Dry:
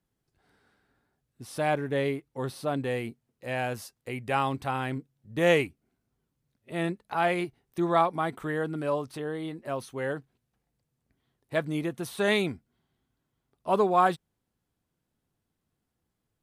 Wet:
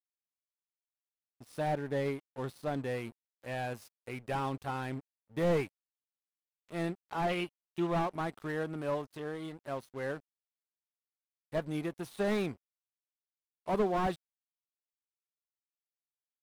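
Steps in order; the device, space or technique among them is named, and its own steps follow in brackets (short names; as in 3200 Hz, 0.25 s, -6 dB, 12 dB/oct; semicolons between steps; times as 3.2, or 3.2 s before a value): early transistor amplifier (crossover distortion -45 dBFS; slew limiter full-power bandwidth 47 Hz); 7.29–7.87 bell 2900 Hz +13.5 dB 0.37 oct; gain -4 dB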